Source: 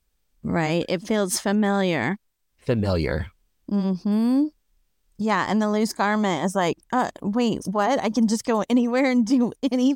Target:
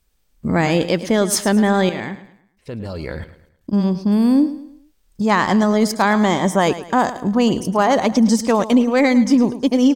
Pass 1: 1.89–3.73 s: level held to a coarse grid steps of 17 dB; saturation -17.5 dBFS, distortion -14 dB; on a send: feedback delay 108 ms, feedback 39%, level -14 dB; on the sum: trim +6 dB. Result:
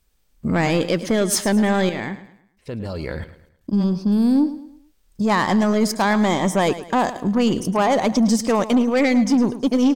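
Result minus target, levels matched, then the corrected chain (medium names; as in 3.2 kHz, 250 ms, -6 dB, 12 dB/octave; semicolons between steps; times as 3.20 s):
saturation: distortion +19 dB
1.89–3.73 s: level held to a coarse grid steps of 17 dB; saturation -5.5 dBFS, distortion -33 dB; on a send: feedback delay 108 ms, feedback 39%, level -14 dB; on the sum: trim +6 dB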